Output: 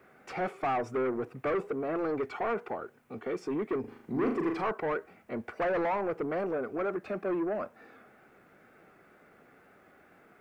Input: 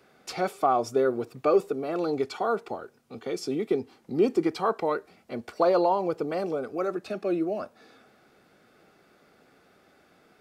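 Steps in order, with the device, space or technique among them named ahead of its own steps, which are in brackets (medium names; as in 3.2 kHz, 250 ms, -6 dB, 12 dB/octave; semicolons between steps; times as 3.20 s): compact cassette (saturation -27 dBFS, distortion -7 dB; low-pass 8.8 kHz; wow and flutter; white noise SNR 33 dB); resonant high shelf 2.9 kHz -12 dB, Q 1.5; 3.80–4.63 s: flutter echo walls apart 6.8 m, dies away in 0.47 s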